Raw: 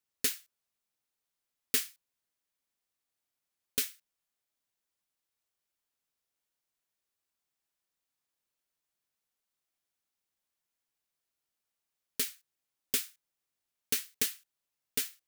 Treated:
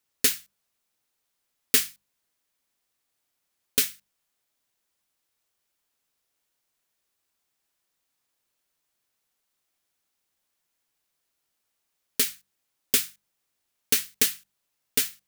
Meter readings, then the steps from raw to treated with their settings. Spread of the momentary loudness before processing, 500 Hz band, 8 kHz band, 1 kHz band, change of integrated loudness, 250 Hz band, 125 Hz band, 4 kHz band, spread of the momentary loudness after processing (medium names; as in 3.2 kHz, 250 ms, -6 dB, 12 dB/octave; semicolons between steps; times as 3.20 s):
12 LU, +8.5 dB, +8.5 dB, +8.5 dB, +8.5 dB, +8.5 dB, +7.5 dB, +8.5 dB, 12 LU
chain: hum notches 50/100/150/200 Hz; trim +8.5 dB